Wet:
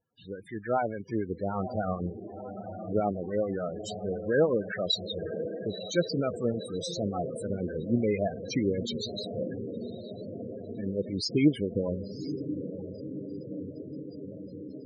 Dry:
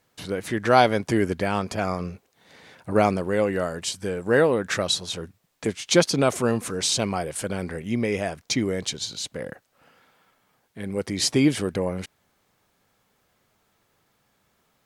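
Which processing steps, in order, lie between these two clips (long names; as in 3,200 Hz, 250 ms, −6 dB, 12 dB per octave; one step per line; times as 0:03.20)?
automatic gain control gain up to 10 dB
two-band tremolo in antiphase 6.8 Hz, depth 50%, crossover 1,200 Hz
feedback delay with all-pass diffusion 988 ms, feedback 72%, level −9 dB
spectral peaks only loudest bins 16
level −8.5 dB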